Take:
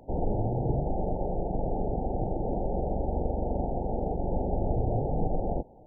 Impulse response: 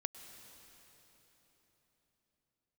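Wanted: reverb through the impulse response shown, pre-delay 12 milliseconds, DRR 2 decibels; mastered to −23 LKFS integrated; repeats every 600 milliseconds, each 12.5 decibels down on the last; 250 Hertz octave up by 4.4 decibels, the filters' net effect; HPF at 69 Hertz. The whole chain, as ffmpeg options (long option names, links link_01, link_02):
-filter_complex "[0:a]highpass=69,equalizer=frequency=250:width_type=o:gain=6,aecho=1:1:600|1200|1800:0.237|0.0569|0.0137,asplit=2[link_01][link_02];[1:a]atrim=start_sample=2205,adelay=12[link_03];[link_02][link_03]afir=irnorm=-1:irlink=0,volume=-0.5dB[link_04];[link_01][link_04]amix=inputs=2:normalize=0,volume=4.5dB"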